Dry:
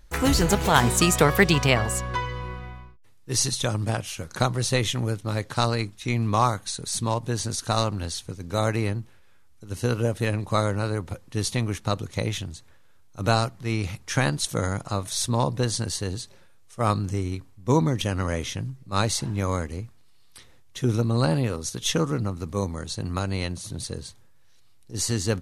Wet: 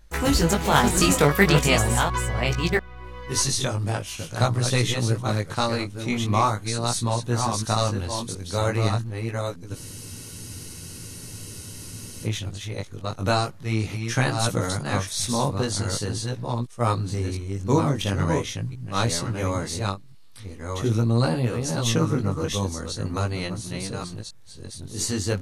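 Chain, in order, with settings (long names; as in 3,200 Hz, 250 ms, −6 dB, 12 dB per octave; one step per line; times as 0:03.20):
delay that plays each chunk backwards 694 ms, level −5 dB
chorus effect 0.42 Hz, delay 16.5 ms, depth 4.7 ms
frozen spectrum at 0:09.78, 2.47 s
level +3 dB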